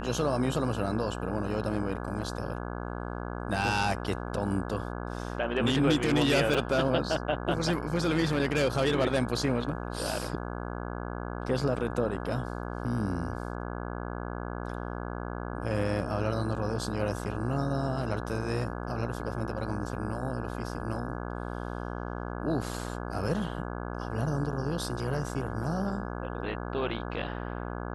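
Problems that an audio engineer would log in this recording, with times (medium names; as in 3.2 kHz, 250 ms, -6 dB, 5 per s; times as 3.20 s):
buzz 60 Hz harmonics 28 -36 dBFS
6.54 s: dropout 4.5 ms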